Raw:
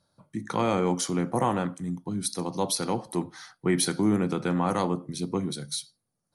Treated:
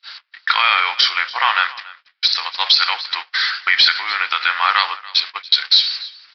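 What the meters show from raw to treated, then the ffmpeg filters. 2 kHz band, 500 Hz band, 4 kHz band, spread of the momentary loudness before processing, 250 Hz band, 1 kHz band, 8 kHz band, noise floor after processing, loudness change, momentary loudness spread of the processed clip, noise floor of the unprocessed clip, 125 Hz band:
+22.5 dB, -12.0 dB, +22.5 dB, 9 LU, under -25 dB, +11.5 dB, -7.5 dB, -58 dBFS, +12.0 dB, 8 LU, -81 dBFS, under -25 dB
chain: -filter_complex "[0:a]aeval=exprs='val(0)+0.5*0.0106*sgn(val(0))':c=same,highpass=f=1500:w=0.5412,highpass=f=1500:w=1.3066,agate=range=0.00794:threshold=0.00501:ratio=16:detection=peak,acontrast=79,acrusher=bits=6:mode=log:mix=0:aa=0.000001,asplit=2[s0][s1];[s1]aecho=0:1:284:0.0944[s2];[s0][s2]amix=inputs=2:normalize=0,aresample=11025,aresample=44100,alimiter=level_in=8.41:limit=0.891:release=50:level=0:latency=1,volume=0.891"

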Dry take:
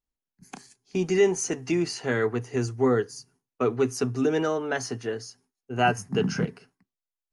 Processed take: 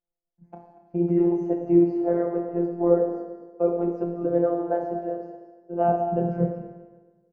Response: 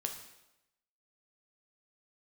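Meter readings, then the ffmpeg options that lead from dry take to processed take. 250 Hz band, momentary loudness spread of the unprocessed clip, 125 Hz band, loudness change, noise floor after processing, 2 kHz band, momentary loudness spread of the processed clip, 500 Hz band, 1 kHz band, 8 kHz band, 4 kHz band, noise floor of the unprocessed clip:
+4.5 dB, 11 LU, 0.0 dB, +2.0 dB, -85 dBFS, under -15 dB, 14 LU, +2.5 dB, +1.0 dB, under -40 dB, under -30 dB, under -85 dBFS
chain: -filter_complex "[0:a]lowpass=f=620:t=q:w=4.2[s0];[1:a]atrim=start_sample=2205,asetrate=30870,aresample=44100[s1];[s0][s1]afir=irnorm=-1:irlink=0,afftfilt=real='hypot(re,im)*cos(PI*b)':imag='0':win_size=1024:overlap=0.75,aecho=1:1:235:0.168"

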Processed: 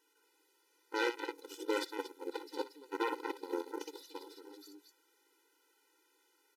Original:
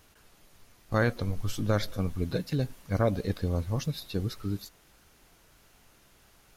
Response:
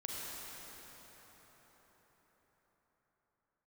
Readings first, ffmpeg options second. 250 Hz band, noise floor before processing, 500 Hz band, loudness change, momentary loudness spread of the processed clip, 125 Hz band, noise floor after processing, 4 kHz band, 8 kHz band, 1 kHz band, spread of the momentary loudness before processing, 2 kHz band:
-10.5 dB, -61 dBFS, -6.5 dB, -9.0 dB, 18 LU, under -40 dB, -74 dBFS, -5.0 dB, -7.5 dB, -2.0 dB, 6 LU, -4.0 dB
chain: -af "aecho=1:1:58.31|230.3:0.631|0.501,aeval=exprs='0.335*(cos(1*acos(clip(val(0)/0.335,-1,1)))-cos(1*PI/2))+0.0335*(cos(4*acos(clip(val(0)/0.335,-1,1)))-cos(4*PI/2))+0.0668*(cos(7*acos(clip(val(0)/0.335,-1,1)))-cos(7*PI/2))':c=same,afftfilt=real='re*eq(mod(floor(b*sr/1024/260),2),1)':imag='im*eq(mod(floor(b*sr/1024/260),2),1)':win_size=1024:overlap=0.75,volume=0.794"

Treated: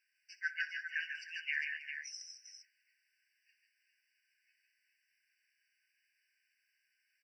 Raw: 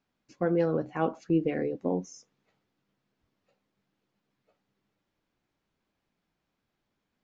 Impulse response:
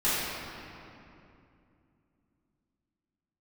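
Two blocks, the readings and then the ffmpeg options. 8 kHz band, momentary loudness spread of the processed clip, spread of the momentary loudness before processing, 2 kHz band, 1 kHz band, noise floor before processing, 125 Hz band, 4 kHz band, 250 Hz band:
no reading, 17 LU, 6 LU, +8.5 dB, under -35 dB, -82 dBFS, under -40 dB, +8.5 dB, under -40 dB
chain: -filter_complex "[0:a]asplit=2[s0][s1];[s1]aecho=0:1:63|136|142|157|312|402:0.158|0.251|0.282|0.447|0.168|0.398[s2];[s0][s2]amix=inputs=2:normalize=0,afftfilt=real='re*eq(mod(floor(b*sr/1024/1500),2),1)':imag='im*eq(mod(floor(b*sr/1024/1500),2),1)':win_size=1024:overlap=0.75,volume=2.37"

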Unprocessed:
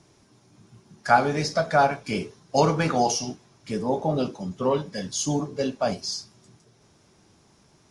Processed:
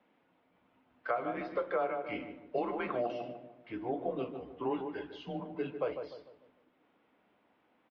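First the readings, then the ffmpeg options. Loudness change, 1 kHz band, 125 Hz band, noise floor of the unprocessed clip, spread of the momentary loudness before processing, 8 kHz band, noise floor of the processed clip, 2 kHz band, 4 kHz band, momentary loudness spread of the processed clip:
-12.0 dB, -14.5 dB, -20.5 dB, -60 dBFS, 10 LU, under -40 dB, -72 dBFS, -13.5 dB, -21.0 dB, 10 LU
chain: -filter_complex "[0:a]asplit=2[s0][s1];[s1]adelay=149,lowpass=f=1300:p=1,volume=0.398,asplit=2[s2][s3];[s3]adelay=149,lowpass=f=1300:p=1,volume=0.43,asplit=2[s4][s5];[s5]adelay=149,lowpass=f=1300:p=1,volume=0.43,asplit=2[s6][s7];[s7]adelay=149,lowpass=f=1300:p=1,volume=0.43,asplit=2[s8][s9];[s9]adelay=149,lowpass=f=1300:p=1,volume=0.43[s10];[s2][s4][s6][s8][s10]amix=inputs=5:normalize=0[s11];[s0][s11]amix=inputs=2:normalize=0,alimiter=limit=0.282:level=0:latency=1:release=454,acompressor=threshold=0.1:ratio=6,highpass=f=380:t=q:w=0.5412,highpass=f=380:t=q:w=1.307,lowpass=f=3100:t=q:w=0.5176,lowpass=f=3100:t=q:w=0.7071,lowpass=f=3100:t=q:w=1.932,afreqshift=-120,volume=0.447"

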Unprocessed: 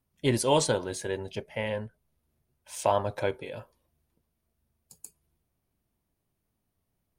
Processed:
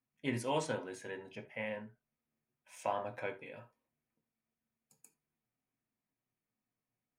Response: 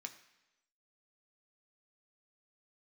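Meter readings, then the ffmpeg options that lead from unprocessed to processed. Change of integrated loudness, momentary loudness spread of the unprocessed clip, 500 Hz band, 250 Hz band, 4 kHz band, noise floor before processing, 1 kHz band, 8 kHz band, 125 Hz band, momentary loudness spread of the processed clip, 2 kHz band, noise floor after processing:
-10.5 dB, 18 LU, -11.5 dB, -9.0 dB, -13.5 dB, -80 dBFS, -9.5 dB, -16.0 dB, -12.5 dB, 16 LU, -6.0 dB, under -85 dBFS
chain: -filter_complex "[0:a]highshelf=f=3000:t=q:w=1.5:g=-7[s0];[1:a]atrim=start_sample=2205,atrim=end_sample=3969[s1];[s0][s1]afir=irnorm=-1:irlink=0,volume=0.631"

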